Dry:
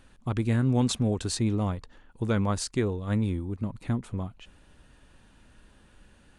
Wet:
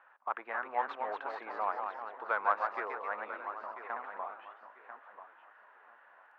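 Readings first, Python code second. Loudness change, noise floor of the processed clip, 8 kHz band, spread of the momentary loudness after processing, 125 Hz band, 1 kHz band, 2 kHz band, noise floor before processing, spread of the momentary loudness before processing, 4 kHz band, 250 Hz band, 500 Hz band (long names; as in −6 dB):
−8.0 dB, −62 dBFS, below −40 dB, 20 LU, below −40 dB, +6.5 dB, +4.0 dB, −59 dBFS, 10 LU, below −20 dB, −29.0 dB, −7.0 dB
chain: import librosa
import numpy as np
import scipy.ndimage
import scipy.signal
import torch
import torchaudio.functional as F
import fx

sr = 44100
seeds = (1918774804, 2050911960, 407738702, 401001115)

p1 = scipy.signal.sosfilt(scipy.signal.butter(4, 1600.0, 'lowpass', fs=sr, output='sos'), x)
p2 = fx.echo_feedback(p1, sr, ms=992, feedback_pct=26, wet_db=-12.0)
p3 = fx.echo_pitch(p2, sr, ms=283, semitones=1, count=3, db_per_echo=-6.0)
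p4 = 10.0 ** (-21.0 / 20.0) * np.tanh(p3 / 10.0 ** (-21.0 / 20.0))
p5 = p3 + (p4 * 10.0 ** (-10.5 / 20.0))
p6 = scipy.signal.sosfilt(scipy.signal.butter(4, 780.0, 'highpass', fs=sr, output='sos'), p5)
y = p6 * 10.0 ** (4.5 / 20.0)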